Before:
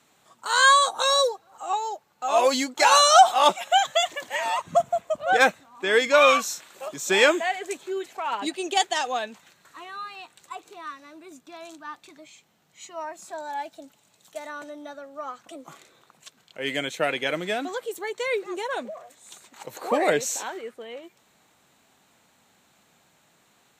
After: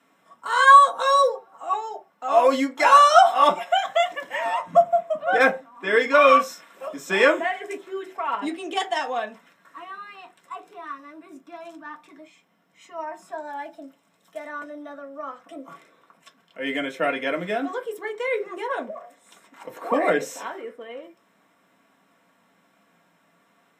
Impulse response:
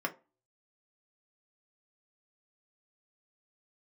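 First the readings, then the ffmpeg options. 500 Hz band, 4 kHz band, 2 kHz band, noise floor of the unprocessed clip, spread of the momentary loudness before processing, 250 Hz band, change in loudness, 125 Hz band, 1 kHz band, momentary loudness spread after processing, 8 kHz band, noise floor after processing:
+2.0 dB, -6.0 dB, +0.5 dB, -63 dBFS, 23 LU, +3.0 dB, +2.0 dB, 0.0 dB, +3.0 dB, 23 LU, -10.5 dB, -64 dBFS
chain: -filter_complex "[1:a]atrim=start_sample=2205,atrim=end_sample=6615[a];[0:a][a]afir=irnorm=-1:irlink=0,volume=-4.5dB"

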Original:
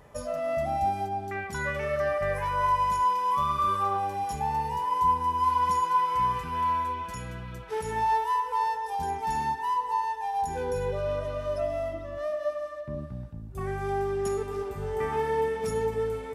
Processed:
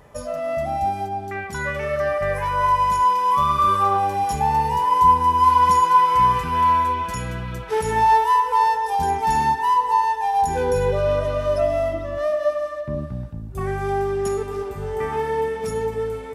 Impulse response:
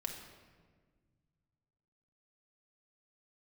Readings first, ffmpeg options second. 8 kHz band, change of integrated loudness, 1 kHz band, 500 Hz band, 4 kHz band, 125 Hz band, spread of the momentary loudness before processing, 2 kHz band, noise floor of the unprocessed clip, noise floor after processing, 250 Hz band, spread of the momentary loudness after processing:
+8.0 dB, +8.5 dB, +8.5 dB, +7.0 dB, +8.5 dB, +7.5 dB, 10 LU, +7.0 dB, -39 dBFS, -33 dBFS, +7.5 dB, 13 LU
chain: -af "dynaudnorm=f=300:g=21:m=5.5dB,volume=4dB"

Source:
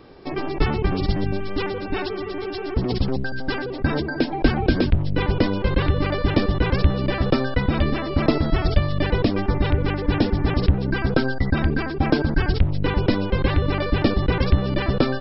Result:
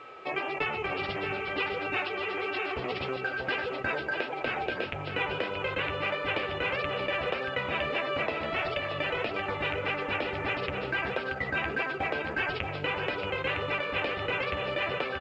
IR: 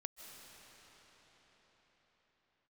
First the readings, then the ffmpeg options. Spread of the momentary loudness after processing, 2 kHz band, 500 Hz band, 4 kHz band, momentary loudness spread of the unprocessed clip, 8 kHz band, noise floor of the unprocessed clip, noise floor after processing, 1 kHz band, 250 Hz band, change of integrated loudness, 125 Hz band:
2 LU, -0.5 dB, -7.0 dB, -4.0 dB, 6 LU, n/a, -29 dBFS, -37 dBFS, -3.5 dB, -17.5 dB, -8.5 dB, -20.0 dB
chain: -filter_complex "[0:a]highpass=100,lowshelf=f=370:t=q:w=1.5:g=-10.5,acompressor=threshold=-28dB:ratio=6,aeval=exprs='val(0)+0.00447*sin(2*PI*1300*n/s)':c=same,flanger=delay=6.9:depth=6.6:regen=-42:speed=1.6:shape=sinusoidal,lowpass=f=2.6k:t=q:w=3.9,aecho=1:1:630:0.447,asplit=2[a][b];[1:a]atrim=start_sample=2205[c];[b][c]afir=irnorm=-1:irlink=0,volume=-9.5dB[d];[a][d]amix=inputs=2:normalize=0" -ar 16000 -c:a pcm_alaw

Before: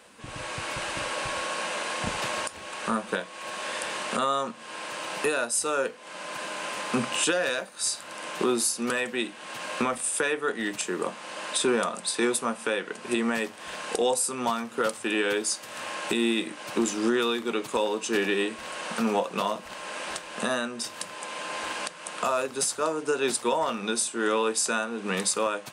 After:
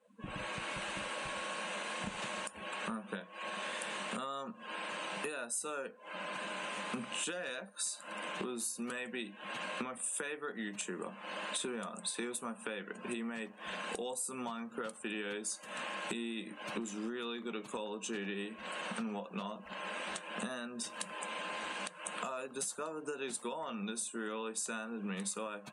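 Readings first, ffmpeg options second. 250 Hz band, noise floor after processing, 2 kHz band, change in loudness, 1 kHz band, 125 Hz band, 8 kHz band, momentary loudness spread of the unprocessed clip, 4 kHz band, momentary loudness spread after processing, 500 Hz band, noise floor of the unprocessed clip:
-11.0 dB, -53 dBFS, -10.5 dB, -11.5 dB, -11.5 dB, -8.0 dB, -11.0 dB, 9 LU, -11.0 dB, 5 LU, -14.0 dB, -44 dBFS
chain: -af "afftdn=nr=23:nf=-44,equalizer=f=100:t=o:w=0.33:g=-7,equalizer=f=200:t=o:w=0.33:g=11,equalizer=f=5k:t=o:w=0.33:g=-8,acompressor=threshold=-37dB:ratio=5,adynamicequalizer=threshold=0.00224:dfrequency=1700:dqfactor=0.7:tfrequency=1700:tqfactor=0.7:attack=5:release=100:ratio=0.375:range=1.5:mode=boostabove:tftype=highshelf,volume=-2dB"

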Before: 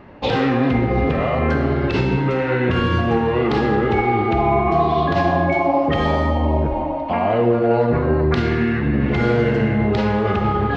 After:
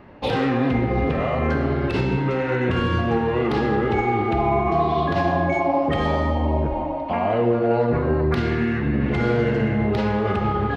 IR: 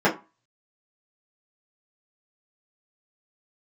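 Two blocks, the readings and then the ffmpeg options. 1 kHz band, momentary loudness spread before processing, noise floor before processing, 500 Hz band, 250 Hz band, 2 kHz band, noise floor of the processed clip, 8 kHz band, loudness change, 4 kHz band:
-3.0 dB, 2 LU, -22 dBFS, -3.0 dB, -3.0 dB, -3.5 dB, -25 dBFS, n/a, -3.0 dB, -4.0 dB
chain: -filter_complex "[0:a]acrossover=split=1600[a][b];[b]asoftclip=type=tanh:threshold=-21.5dB[c];[a][c]amix=inputs=2:normalize=0,asplit=2[d][e];[e]adelay=360,highpass=300,lowpass=3.4k,asoftclip=type=hard:threshold=-14dB,volume=-22dB[f];[d][f]amix=inputs=2:normalize=0,volume=-3dB"

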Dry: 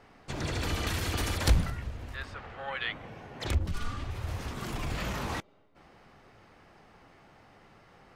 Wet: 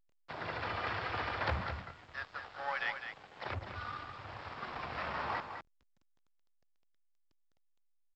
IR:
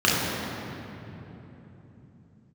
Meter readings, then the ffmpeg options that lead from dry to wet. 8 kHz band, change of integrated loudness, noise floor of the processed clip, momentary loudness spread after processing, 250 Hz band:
under -25 dB, -6.0 dB, -72 dBFS, 11 LU, -12.0 dB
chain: -filter_complex "[0:a]highpass=f=42:w=0.5412,highpass=f=42:w=1.3066,acrossover=split=580 2000:gain=0.141 1 0.126[a][b][c];[a][b][c]amix=inputs=3:normalize=0,aeval=exprs='(tanh(17.8*val(0)+0.1)-tanh(0.1))/17.8':c=same,aresample=11025,aeval=exprs='sgn(val(0))*max(abs(val(0))-0.00266,0)':c=same,aresample=44100,afreqshift=17,aecho=1:1:206:0.398,volume=5dB" -ar 16000 -c:a pcm_alaw

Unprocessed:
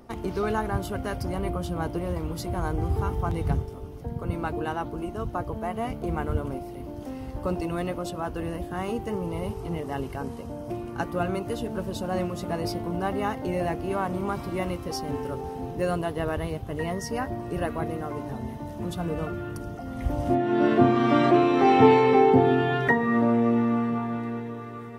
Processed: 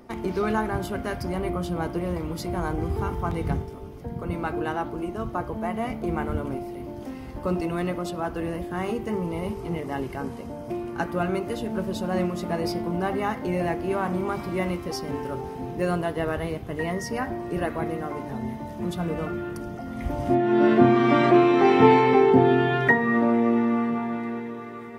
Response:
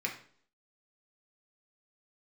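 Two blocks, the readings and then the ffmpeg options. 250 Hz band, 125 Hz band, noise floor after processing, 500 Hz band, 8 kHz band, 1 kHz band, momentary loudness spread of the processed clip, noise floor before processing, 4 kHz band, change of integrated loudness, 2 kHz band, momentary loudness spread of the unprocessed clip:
+2.0 dB, 0.0 dB, -38 dBFS, +1.5 dB, 0.0 dB, +0.5 dB, 15 LU, -38 dBFS, +1.0 dB, +1.5 dB, +3.5 dB, 14 LU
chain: -filter_complex "[0:a]asplit=2[a][b];[b]lowpass=7.5k[c];[1:a]atrim=start_sample=2205,highshelf=f=8.4k:g=-9.5[d];[c][d]afir=irnorm=-1:irlink=0,volume=-9dB[e];[a][e]amix=inputs=2:normalize=0"

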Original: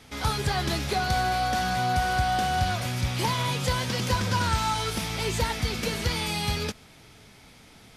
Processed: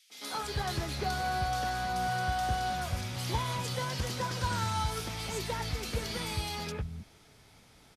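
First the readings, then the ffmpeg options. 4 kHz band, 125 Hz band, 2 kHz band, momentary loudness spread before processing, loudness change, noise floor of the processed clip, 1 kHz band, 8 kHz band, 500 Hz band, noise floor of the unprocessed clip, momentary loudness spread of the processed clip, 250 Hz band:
-7.5 dB, -6.5 dB, -7.5 dB, 4 LU, -7.0 dB, -59 dBFS, -6.0 dB, -6.0 dB, -6.5 dB, -52 dBFS, 5 LU, -8.0 dB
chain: -filter_complex "[0:a]acrossover=split=210|2500[a][b][c];[b]adelay=100[d];[a]adelay=310[e];[e][d][c]amix=inputs=3:normalize=0,volume=-6dB"

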